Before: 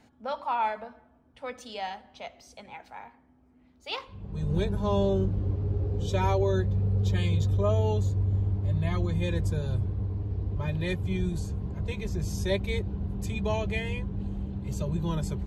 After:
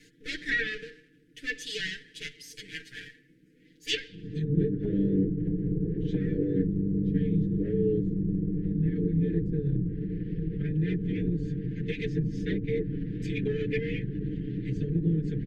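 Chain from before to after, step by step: comb filter that takes the minimum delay 6.9 ms; Chebyshev band-stop 440–1700 Hz, order 4; low-pass that closes with the level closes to 570 Hz, closed at -27 dBFS; bass shelf 280 Hz -8.5 dB; hum notches 50/100/150 Hz; comb 6.3 ms, depth 85%; trim +7.5 dB

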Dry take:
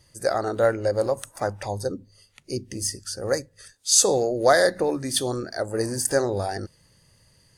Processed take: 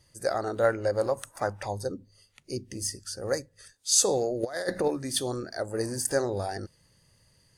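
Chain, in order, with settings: 0.64–1.73 s: peaking EQ 1.3 kHz +4 dB 1.6 oct; 4.43–4.88 s: compressor with a negative ratio -23 dBFS, ratio -0.5; trim -4.5 dB

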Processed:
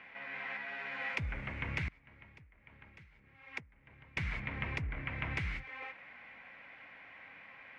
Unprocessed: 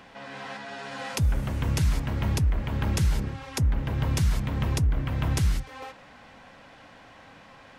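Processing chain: tilt EQ -4.5 dB/octave; 1.88–4.17 s: compression 6:1, threshold -30 dBFS, peak gain reduction 26 dB; band-pass filter 2.2 kHz, Q 5.8; trim +12 dB

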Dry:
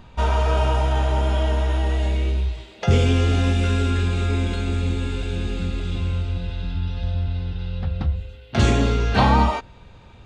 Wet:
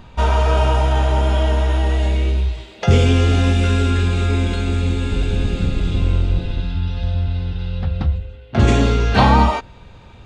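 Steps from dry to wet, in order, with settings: 5.09–6.61 s: octave divider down 1 oct, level 0 dB; 8.17–8.67 s: treble shelf 3.7 kHz -> 2.4 kHz -12 dB; trim +4 dB

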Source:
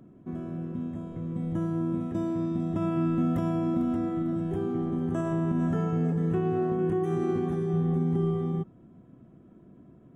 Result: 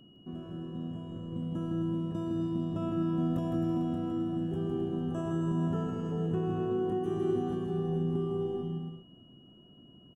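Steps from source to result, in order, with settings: peaking EQ 2.1 kHz -14.5 dB 0.31 oct; bouncing-ball echo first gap 160 ms, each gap 0.65×, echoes 5; whistle 2.9 kHz -55 dBFS; trim -5.5 dB

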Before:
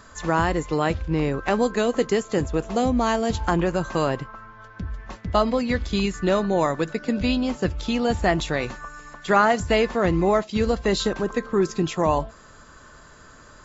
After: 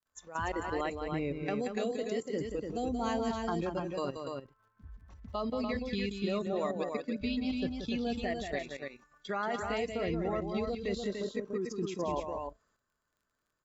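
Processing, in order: spectral noise reduction 14 dB; expander -53 dBFS; bass shelf 110 Hz -3.5 dB; level held to a coarse grid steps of 13 dB; crackle 17 per s -55 dBFS; loudspeakers at several distances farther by 62 m -7 dB, 100 m -5 dB; trim -7.5 dB

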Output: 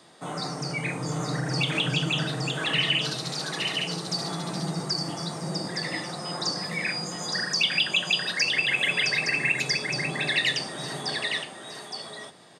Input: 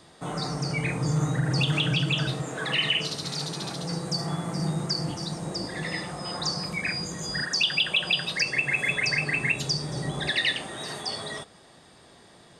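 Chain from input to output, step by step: high-pass 160 Hz 12 dB/octave; hum notches 50/100/150/200/250/300/350/400/450/500 Hz; on a send: delay 866 ms -4.5 dB

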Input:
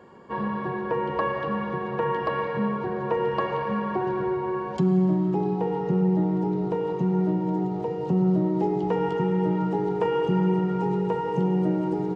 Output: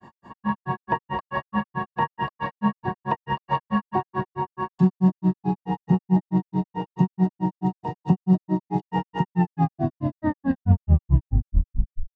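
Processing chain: tape stop on the ending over 2.87 s; comb 1.1 ms, depth 76%; granulator 122 ms, grains 4.6 per s, spray 14 ms, pitch spread up and down by 0 st; trim +5 dB

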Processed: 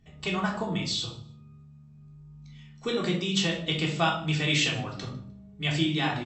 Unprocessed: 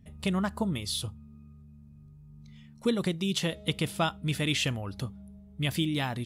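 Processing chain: brick-wall FIR low-pass 8.1 kHz; bass shelf 310 Hz -10 dB; feedback delay 152 ms, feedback 22%, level -23 dB; simulated room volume 580 m³, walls furnished, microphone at 3.5 m

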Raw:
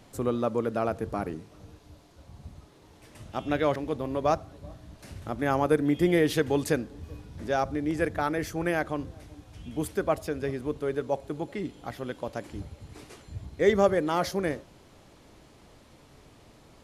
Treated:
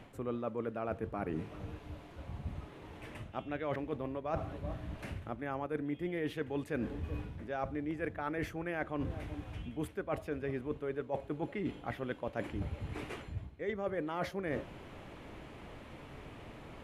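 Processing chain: resonant high shelf 3.6 kHz -10 dB, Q 1.5; reverse; compression 16:1, threshold -38 dBFS, peak gain reduction 22.5 dB; reverse; trim +5 dB

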